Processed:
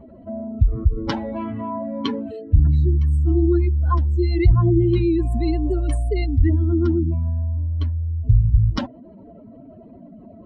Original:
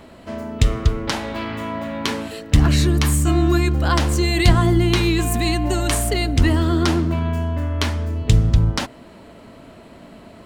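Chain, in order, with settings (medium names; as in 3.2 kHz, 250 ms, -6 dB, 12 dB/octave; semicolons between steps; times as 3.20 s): spectral contrast enhancement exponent 2.5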